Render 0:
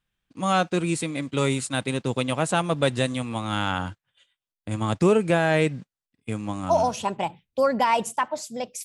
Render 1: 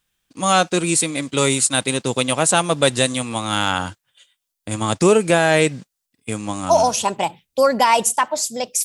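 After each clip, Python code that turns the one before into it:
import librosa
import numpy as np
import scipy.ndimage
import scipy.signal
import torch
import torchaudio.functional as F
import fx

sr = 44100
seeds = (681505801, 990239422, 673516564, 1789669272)

y = fx.bass_treble(x, sr, bass_db=-5, treble_db=10)
y = y * 10.0 ** (6.0 / 20.0)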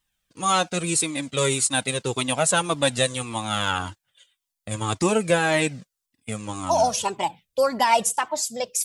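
y = fx.comb_cascade(x, sr, direction='falling', hz=1.8)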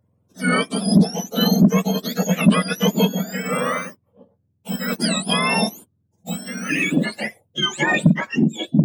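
y = fx.octave_mirror(x, sr, pivot_hz=1300.0)
y = 10.0 ** (-7.5 / 20.0) * np.tanh(y / 10.0 ** (-7.5 / 20.0))
y = y * 10.0 ** (3.0 / 20.0)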